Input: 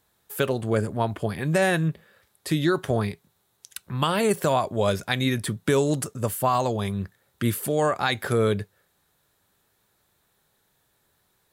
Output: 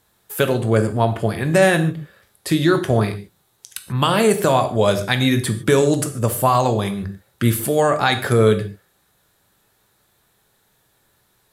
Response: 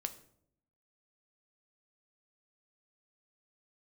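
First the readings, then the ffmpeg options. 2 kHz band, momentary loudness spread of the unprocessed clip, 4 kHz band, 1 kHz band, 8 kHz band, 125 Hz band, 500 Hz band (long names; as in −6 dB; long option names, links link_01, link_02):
+6.5 dB, 11 LU, +6.5 dB, +6.5 dB, +6.5 dB, +7.0 dB, +7.0 dB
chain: -filter_complex "[1:a]atrim=start_sample=2205,atrim=end_sample=4410,asetrate=28224,aresample=44100[link_01];[0:a][link_01]afir=irnorm=-1:irlink=0,volume=5dB"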